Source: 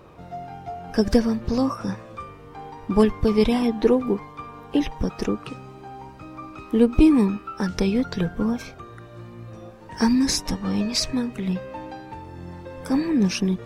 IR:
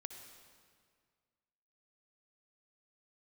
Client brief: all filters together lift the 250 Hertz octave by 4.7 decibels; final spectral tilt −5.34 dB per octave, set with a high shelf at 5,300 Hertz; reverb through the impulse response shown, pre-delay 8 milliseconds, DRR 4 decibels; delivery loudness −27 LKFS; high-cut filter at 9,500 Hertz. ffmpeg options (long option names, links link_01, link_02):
-filter_complex "[0:a]lowpass=9500,equalizer=frequency=250:width_type=o:gain=5.5,highshelf=frequency=5300:gain=7.5,asplit=2[link_01][link_02];[1:a]atrim=start_sample=2205,adelay=8[link_03];[link_02][link_03]afir=irnorm=-1:irlink=0,volume=0dB[link_04];[link_01][link_04]amix=inputs=2:normalize=0,volume=-10dB"